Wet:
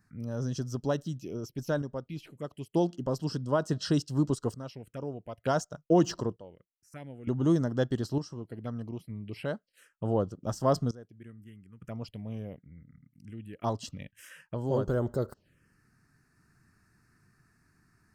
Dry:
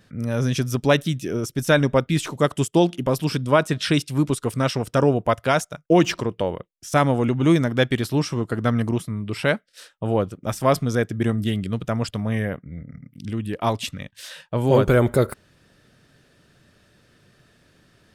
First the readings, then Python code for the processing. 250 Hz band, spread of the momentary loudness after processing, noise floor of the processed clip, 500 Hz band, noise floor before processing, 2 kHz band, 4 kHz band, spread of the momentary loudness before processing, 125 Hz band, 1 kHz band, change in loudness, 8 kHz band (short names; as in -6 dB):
-9.5 dB, 18 LU, -75 dBFS, -10.5 dB, -60 dBFS, -18.0 dB, -14.5 dB, 11 LU, -10.5 dB, -12.0 dB, -10.0 dB, -12.0 dB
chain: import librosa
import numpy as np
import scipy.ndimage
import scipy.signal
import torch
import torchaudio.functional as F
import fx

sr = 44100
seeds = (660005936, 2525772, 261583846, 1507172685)

y = fx.tremolo_random(x, sr, seeds[0], hz=1.1, depth_pct=90)
y = fx.notch(y, sr, hz=3600.0, q=6.0)
y = fx.env_phaser(y, sr, low_hz=520.0, high_hz=2300.0, full_db=-25.5)
y = F.gain(torch.from_numpy(y), -6.0).numpy()